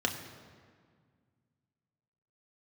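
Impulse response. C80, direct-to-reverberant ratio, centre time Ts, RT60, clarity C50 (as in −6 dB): 9.5 dB, 2.0 dB, 29 ms, 1.9 s, 8.5 dB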